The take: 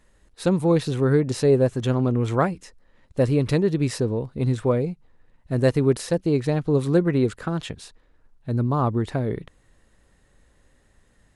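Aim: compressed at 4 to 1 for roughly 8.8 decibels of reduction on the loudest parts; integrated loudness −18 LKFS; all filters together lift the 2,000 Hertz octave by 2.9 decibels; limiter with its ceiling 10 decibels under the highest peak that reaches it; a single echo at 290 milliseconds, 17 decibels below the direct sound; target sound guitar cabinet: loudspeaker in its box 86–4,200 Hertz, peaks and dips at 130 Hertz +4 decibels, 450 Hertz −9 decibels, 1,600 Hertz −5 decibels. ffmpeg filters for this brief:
ffmpeg -i in.wav -af "equalizer=frequency=2000:width_type=o:gain=7,acompressor=threshold=-24dB:ratio=4,alimiter=limit=-23.5dB:level=0:latency=1,highpass=86,equalizer=frequency=130:width_type=q:width=4:gain=4,equalizer=frequency=450:width_type=q:width=4:gain=-9,equalizer=frequency=1600:width_type=q:width=4:gain=-5,lowpass=frequency=4200:width=0.5412,lowpass=frequency=4200:width=1.3066,aecho=1:1:290:0.141,volume=15.5dB" out.wav

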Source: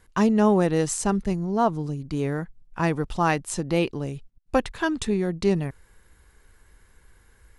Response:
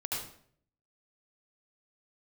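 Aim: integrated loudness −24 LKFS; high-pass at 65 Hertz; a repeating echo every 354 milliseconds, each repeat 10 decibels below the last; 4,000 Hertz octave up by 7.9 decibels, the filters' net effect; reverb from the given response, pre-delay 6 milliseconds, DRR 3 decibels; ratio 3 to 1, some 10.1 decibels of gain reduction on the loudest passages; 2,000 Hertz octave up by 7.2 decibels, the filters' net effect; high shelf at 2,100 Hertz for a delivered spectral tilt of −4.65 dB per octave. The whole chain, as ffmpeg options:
-filter_complex "[0:a]highpass=65,equalizer=frequency=2000:width_type=o:gain=6.5,highshelf=frequency=2100:gain=3,equalizer=frequency=4000:width_type=o:gain=5,acompressor=threshold=-28dB:ratio=3,aecho=1:1:354|708|1062|1416:0.316|0.101|0.0324|0.0104,asplit=2[link_01][link_02];[1:a]atrim=start_sample=2205,adelay=6[link_03];[link_02][link_03]afir=irnorm=-1:irlink=0,volume=-7dB[link_04];[link_01][link_04]amix=inputs=2:normalize=0,volume=4.5dB"

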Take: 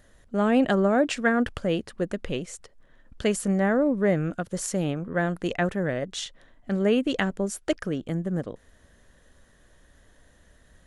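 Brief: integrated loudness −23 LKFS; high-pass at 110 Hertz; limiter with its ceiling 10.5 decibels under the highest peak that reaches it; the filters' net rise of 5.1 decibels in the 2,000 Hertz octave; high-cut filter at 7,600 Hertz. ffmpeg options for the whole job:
ffmpeg -i in.wav -af "highpass=110,lowpass=7600,equalizer=frequency=2000:width_type=o:gain=6.5,volume=4dB,alimiter=limit=-11dB:level=0:latency=1" out.wav

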